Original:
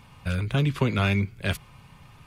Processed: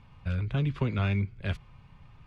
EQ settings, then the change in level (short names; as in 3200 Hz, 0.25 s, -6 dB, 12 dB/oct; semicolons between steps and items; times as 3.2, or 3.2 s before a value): Bessel low-pass 3500 Hz, order 2; low shelf 90 Hz +11.5 dB; -7.5 dB